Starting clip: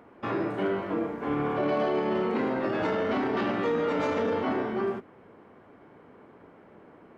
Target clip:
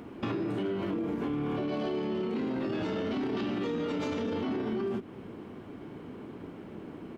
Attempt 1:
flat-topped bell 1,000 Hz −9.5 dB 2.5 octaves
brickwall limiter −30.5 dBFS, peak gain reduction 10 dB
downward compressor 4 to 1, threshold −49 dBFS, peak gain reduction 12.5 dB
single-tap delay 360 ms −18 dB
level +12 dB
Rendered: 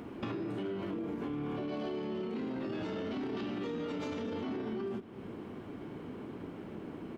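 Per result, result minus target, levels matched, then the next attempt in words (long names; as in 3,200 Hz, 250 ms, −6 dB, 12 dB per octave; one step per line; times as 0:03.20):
echo-to-direct +8 dB; downward compressor: peak gain reduction +5.5 dB
flat-topped bell 1,000 Hz −9.5 dB 2.5 octaves
brickwall limiter −30.5 dBFS, peak gain reduction 10 dB
downward compressor 4 to 1, threshold −49 dBFS, peak gain reduction 12.5 dB
single-tap delay 360 ms −26 dB
level +12 dB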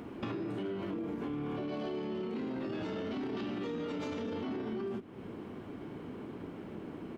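downward compressor: peak gain reduction +5.5 dB
flat-topped bell 1,000 Hz −9.5 dB 2.5 octaves
brickwall limiter −30.5 dBFS, peak gain reduction 10 dB
downward compressor 4 to 1, threshold −42 dBFS, peak gain reduction 7 dB
single-tap delay 360 ms −26 dB
level +12 dB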